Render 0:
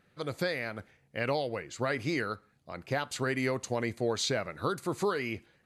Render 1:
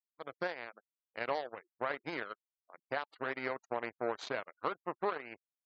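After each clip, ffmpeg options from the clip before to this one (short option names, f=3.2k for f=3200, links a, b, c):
-af "aeval=exprs='0.15*(cos(1*acos(clip(val(0)/0.15,-1,1)))-cos(1*PI/2))+0.0188*(cos(3*acos(clip(val(0)/0.15,-1,1)))-cos(3*PI/2))+0.00188*(cos(5*acos(clip(val(0)/0.15,-1,1)))-cos(5*PI/2))+0.00376*(cos(6*acos(clip(val(0)/0.15,-1,1)))-cos(6*PI/2))+0.0133*(cos(7*acos(clip(val(0)/0.15,-1,1)))-cos(7*PI/2))':c=same,bandpass=f=930:t=q:w=0.68:csg=0,afftfilt=real='re*gte(hypot(re,im),0.00178)':imag='im*gte(hypot(re,im),0.00178)':win_size=1024:overlap=0.75,volume=1dB"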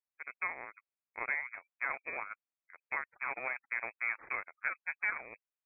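-af "lowpass=f=2.3k:t=q:w=0.5098,lowpass=f=2.3k:t=q:w=0.6013,lowpass=f=2.3k:t=q:w=0.9,lowpass=f=2.3k:t=q:w=2.563,afreqshift=-2700"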